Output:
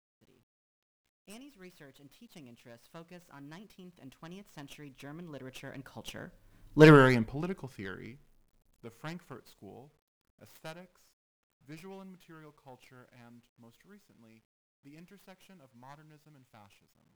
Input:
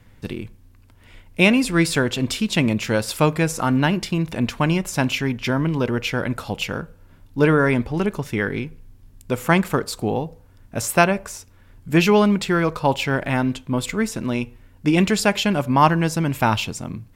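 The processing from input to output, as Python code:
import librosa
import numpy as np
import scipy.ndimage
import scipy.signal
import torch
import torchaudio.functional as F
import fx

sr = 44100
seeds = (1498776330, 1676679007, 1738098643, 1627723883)

y = fx.tracing_dist(x, sr, depth_ms=0.28)
y = fx.doppler_pass(y, sr, speed_mps=28, closest_m=3.0, pass_at_s=6.89)
y = fx.peak_eq(y, sr, hz=81.0, db=-12.5, octaves=0.25)
y = fx.quant_dither(y, sr, seeds[0], bits=12, dither='none')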